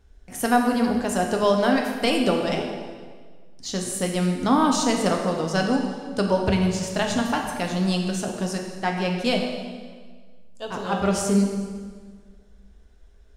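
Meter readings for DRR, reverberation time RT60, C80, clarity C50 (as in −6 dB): 1.0 dB, 1.7 s, 5.5 dB, 4.0 dB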